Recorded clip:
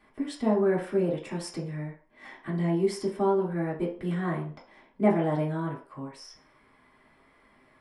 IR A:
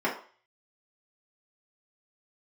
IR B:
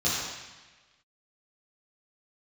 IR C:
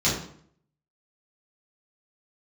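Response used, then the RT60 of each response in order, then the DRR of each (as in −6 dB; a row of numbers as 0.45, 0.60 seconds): A; 0.40, 1.2, 0.60 seconds; −6.5, −10.0, −8.5 decibels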